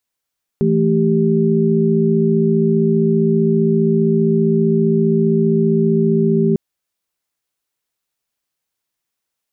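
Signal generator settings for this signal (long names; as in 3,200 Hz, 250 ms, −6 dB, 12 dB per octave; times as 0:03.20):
held notes E3/A3/G4 sine, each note −16 dBFS 5.95 s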